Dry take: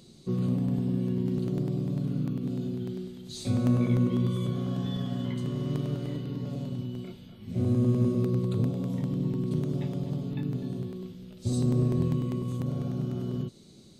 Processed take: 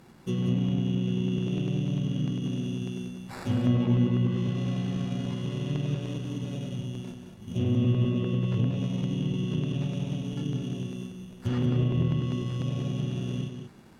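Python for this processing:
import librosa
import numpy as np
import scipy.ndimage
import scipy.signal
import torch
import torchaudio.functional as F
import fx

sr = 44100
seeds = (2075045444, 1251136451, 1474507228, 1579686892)

y = fx.sample_hold(x, sr, seeds[0], rate_hz=3100.0, jitter_pct=0)
y = fx.env_lowpass_down(y, sr, base_hz=2100.0, full_db=-21.5)
y = y + 10.0 ** (-7.5 / 20.0) * np.pad(y, (int(185 * sr / 1000.0), 0))[:len(y)]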